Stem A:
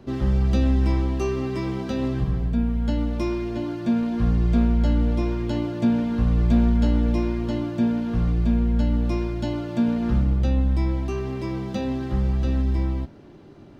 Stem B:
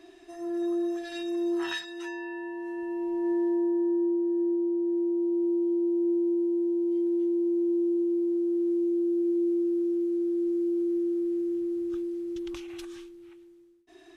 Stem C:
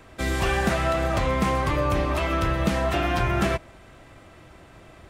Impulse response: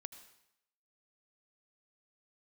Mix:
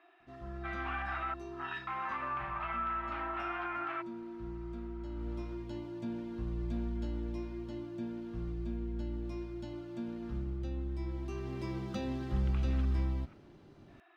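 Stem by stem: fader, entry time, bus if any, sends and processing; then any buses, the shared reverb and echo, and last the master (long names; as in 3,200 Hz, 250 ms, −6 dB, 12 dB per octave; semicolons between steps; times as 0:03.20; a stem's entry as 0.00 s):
0:05.08 −24 dB → 0:05.29 −17 dB → 0:10.92 −17 dB → 0:11.62 −8 dB, 0.20 s, no bus, no send, no processing
−5.0 dB, 0.00 s, bus A, no send, spectral tilt +3 dB per octave
−5.5 dB, 0.45 s, muted 0:01.34–0:01.87, bus A, no send, high-pass filter 1,100 Hz 12 dB per octave; expander for the loud parts 1.5 to 1, over −40 dBFS
bus A: 0.0 dB, loudspeaker in its box 380–2,400 Hz, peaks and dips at 440 Hz −9 dB, 790 Hz +7 dB, 1,300 Hz +10 dB, 1,800 Hz −4 dB; brickwall limiter −28.5 dBFS, peak gain reduction 9.5 dB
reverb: not used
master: parametric band 350 Hz −3.5 dB 2.2 octaves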